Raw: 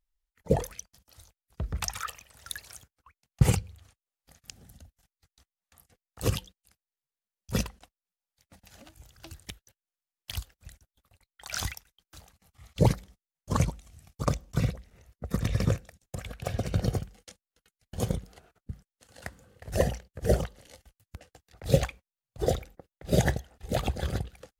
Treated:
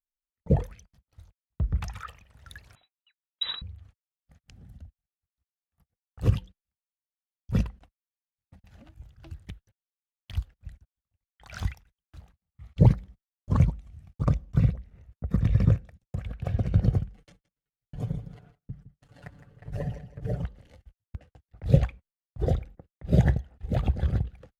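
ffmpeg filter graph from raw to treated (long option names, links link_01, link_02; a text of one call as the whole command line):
ffmpeg -i in.wav -filter_complex "[0:a]asettb=1/sr,asplit=3[link_01][link_02][link_03];[link_01]atrim=end=2.754[link_04];[link_02]atrim=start=2.75:end=3.62,asetpts=PTS-STARTPTS,afade=type=in:duration=0.004:curve=qsin,afade=type=out:start_time=0.866:duration=0.004:curve=qsin,lowpass=frequency=3400:width_type=q:width=0.5098,lowpass=frequency=3400:width_type=q:width=0.6013,lowpass=frequency=3400:width_type=q:width=0.9,lowpass=frequency=3400:width_type=q:width=2.563,afreqshift=-4000,bandreject=frequency=127.1:width_type=h:width=4,bandreject=frequency=254.2:width_type=h:width=4,bandreject=frequency=381.3:width_type=h:width=4,bandreject=frequency=508.4:width_type=h:width=4,bandreject=frequency=635.5:width_type=h:width=4,bandreject=frequency=762.6:width_type=h:width=4,bandreject=frequency=889.7:width_type=h:width=4,bandreject=frequency=1016.8:width_type=h:width=4,bandreject=frequency=1143.9:width_type=h:width=4,bandreject=frequency=1271:width_type=h:width=4,bandreject=frequency=1398.1:width_type=h:width=4,bandreject=frequency=1525.2:width_type=h:width=4,bandreject=frequency=1652.3:width_type=h:width=4,bandreject=frequency=1779.4:width_type=h:width=4,bandreject=frequency=1906.5:width_type=h:width=4,bandreject=frequency=2033.6:width_type=h:width=4,bandreject=frequency=2160.7:width_type=h:width=4,bandreject=frequency=2287.8:width_type=h:width=4,bandreject=frequency=2414.9:width_type=h:width=4,bandreject=frequency=2542:width_type=h:width=4[link_05];[link_03]atrim=start=3.616[link_06];[link_04][link_05]acrossfade=duration=0.004:curve1=hsin:curve2=qsin[link_07];[link_07][link_06]acrossfade=duration=0.004:curve1=qsin:curve2=hsin,asettb=1/sr,asplit=3[link_08][link_09][link_10];[link_08]atrim=end=17.174[link_11];[link_09]atrim=start=17.17:end=20.44,asetpts=PTS-STARTPTS,afade=type=in:duration=0.004:curve=qsin,afade=type=out:start_time=3.266:duration=0.004:curve=qsin,acompressor=threshold=-48dB:ratio=1.5:attack=3.2:release=140:knee=1:detection=peak,aecho=1:1:6.9:0.98,atrim=end_sample=144207,aecho=1:1:162|324|486:0.237|0.0664|0.0186,atrim=end_sample=144207[link_12];[link_10]atrim=start=20.436[link_13];[link_11][link_12]acrossfade=duration=0.004:curve1=hsin:curve2=qsin[link_14];[link_14][link_13]acrossfade=duration=0.004:curve1=qsin:curve2=hsin,agate=range=-26dB:threshold=-57dB:ratio=16:detection=peak,bass=frequency=250:gain=11,treble=frequency=4000:gain=-14,volume=-4.5dB" out.wav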